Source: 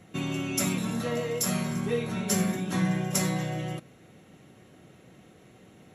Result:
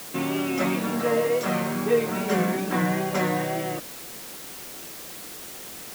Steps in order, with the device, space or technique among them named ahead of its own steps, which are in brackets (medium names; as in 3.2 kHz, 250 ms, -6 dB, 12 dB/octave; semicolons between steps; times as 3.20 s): wax cylinder (band-pass 290–2000 Hz; wow and flutter; white noise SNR 13 dB); trim +9 dB